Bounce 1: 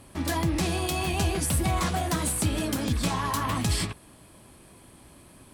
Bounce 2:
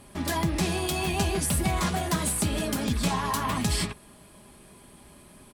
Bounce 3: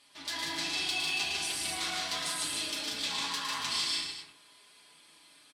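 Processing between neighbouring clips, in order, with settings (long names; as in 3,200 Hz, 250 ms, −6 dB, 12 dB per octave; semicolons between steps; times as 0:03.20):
comb filter 4.9 ms, depth 39%
resonant band-pass 3,900 Hz, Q 1.7; multi-tap delay 111/148/187/280/379 ms −5.5/−3/−5/−8.5/−12 dB; feedback delay network reverb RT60 0.64 s, low-frequency decay 1×, high-frequency decay 0.35×, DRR −1.5 dB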